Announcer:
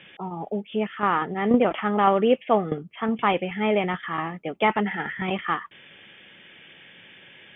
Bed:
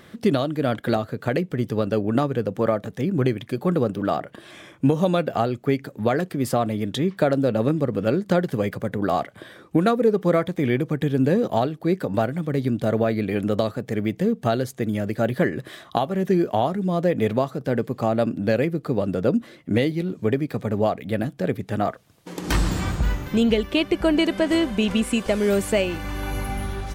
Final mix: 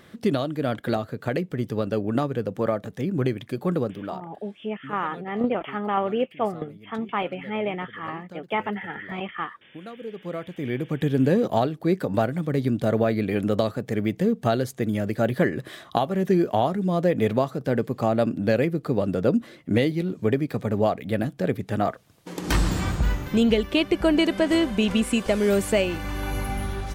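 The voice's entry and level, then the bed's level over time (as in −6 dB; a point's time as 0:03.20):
3.90 s, −5.0 dB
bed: 0:03.77 −3 dB
0:04.63 −23 dB
0:09.73 −23 dB
0:11.07 −0.5 dB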